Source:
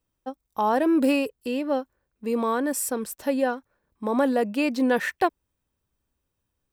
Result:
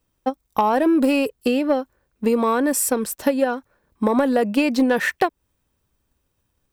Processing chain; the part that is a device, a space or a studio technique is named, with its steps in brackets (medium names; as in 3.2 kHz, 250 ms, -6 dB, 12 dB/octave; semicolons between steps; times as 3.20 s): drum-bus smash (transient shaper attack +7 dB, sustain +1 dB; compression 6:1, threshold -20 dBFS, peak gain reduction 10 dB; saturation -14.5 dBFS, distortion -21 dB); trim +7 dB